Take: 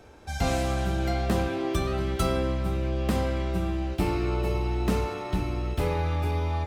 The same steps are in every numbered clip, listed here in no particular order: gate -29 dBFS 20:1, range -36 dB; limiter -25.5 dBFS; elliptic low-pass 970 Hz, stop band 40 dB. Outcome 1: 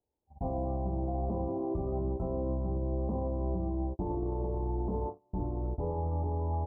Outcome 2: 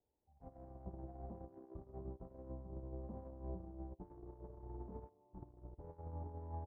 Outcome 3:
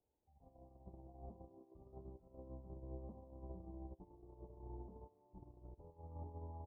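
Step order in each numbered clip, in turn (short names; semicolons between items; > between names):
gate > elliptic low-pass > limiter; elliptic low-pass > limiter > gate; limiter > gate > elliptic low-pass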